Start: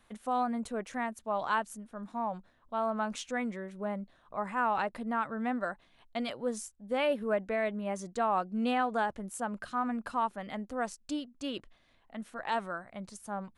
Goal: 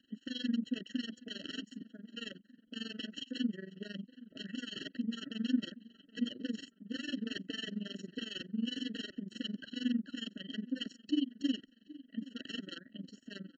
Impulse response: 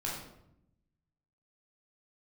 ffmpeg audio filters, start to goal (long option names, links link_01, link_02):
-filter_complex "[0:a]highshelf=frequency=3200:gain=10.5,acrossover=split=690|2000[link_01][link_02][link_03];[link_01]alimiter=level_in=6.5dB:limit=-24dB:level=0:latency=1:release=19,volume=-6.5dB[link_04];[link_04][link_02][link_03]amix=inputs=3:normalize=0,asettb=1/sr,asplit=3[link_05][link_06][link_07];[link_05]atrim=end=1.814[link_08];[link_06]atrim=start=1.81:end=3.39,asetpts=PTS-STARTPTS,afade=type=in:duration=0.004:curve=qsin,afade=type=out:start_time=1.576:duration=0.004:curve=qsin,acrossover=split=360[link_09][link_10];[link_09]acompressor=threshold=-54dB:ratio=2.5[link_11];[link_11][link_10]amix=inputs=2:normalize=0[link_12];[link_07]atrim=start=3.386[link_13];[link_08][link_12]acrossfade=duration=0.004:curve1=hsin:curve2=qsin[link_14];[link_14][link_13]acrossfade=duration=0.004:curve1=qsin:curve2=hsin,aeval=exprs='(mod(26.6*val(0)+1,2)-1)/26.6':channel_layout=same,asplit=3[link_15][link_16][link_17];[link_15]bandpass=frequency=270:width_type=q:width=8,volume=0dB[link_18];[link_16]bandpass=frequency=2290:width_type=q:width=8,volume=-6dB[link_19];[link_17]bandpass=frequency=3010:width_type=q:width=8,volume=-9dB[link_20];[link_18][link_19][link_20]amix=inputs=3:normalize=0,tremolo=f=22:d=0.919,asplit=2[link_21][link_22];[link_22]adelay=773,lowpass=frequency=1700:poles=1,volume=-18.5dB,asplit=2[link_23][link_24];[link_24]adelay=773,lowpass=frequency=1700:poles=1,volume=0.49,asplit=2[link_25][link_26];[link_26]adelay=773,lowpass=frequency=1700:poles=1,volume=0.49,asplit=2[link_27][link_28];[link_28]adelay=773,lowpass=frequency=1700:poles=1,volume=0.49[link_29];[link_23][link_25][link_27][link_29]amix=inputs=4:normalize=0[link_30];[link_21][link_30]amix=inputs=2:normalize=0,aresample=16000,aresample=44100,afftfilt=real='re*eq(mod(floor(b*sr/1024/650),2),0)':imag='im*eq(mod(floor(b*sr/1024/650),2),0)':win_size=1024:overlap=0.75,volume=14.5dB"